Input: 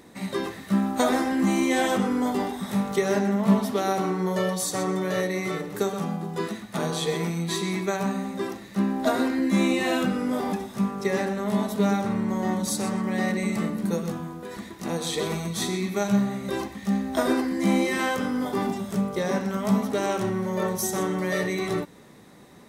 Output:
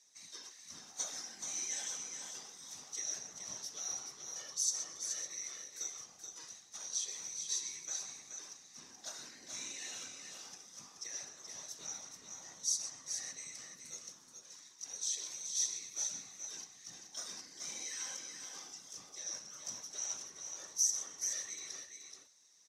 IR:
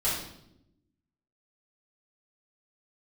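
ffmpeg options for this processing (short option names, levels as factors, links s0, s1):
-af "bandpass=f=5900:t=q:w=9.1:csg=0,afftfilt=real='hypot(re,im)*cos(2*PI*random(0))':imag='hypot(re,im)*sin(2*PI*random(1))':win_size=512:overlap=0.75,aecho=1:1:428:0.473,volume=3.98"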